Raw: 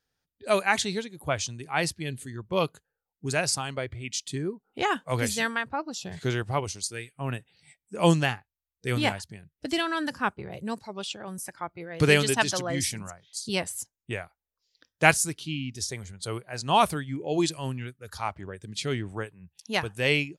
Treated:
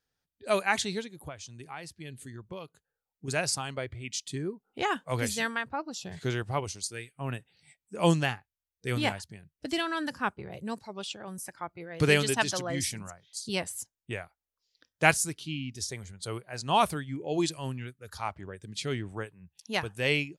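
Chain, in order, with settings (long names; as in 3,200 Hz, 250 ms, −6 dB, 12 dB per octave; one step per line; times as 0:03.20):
0:01.09–0:03.28: downward compressor 8 to 1, threshold −36 dBFS, peak gain reduction 15.5 dB
level −3 dB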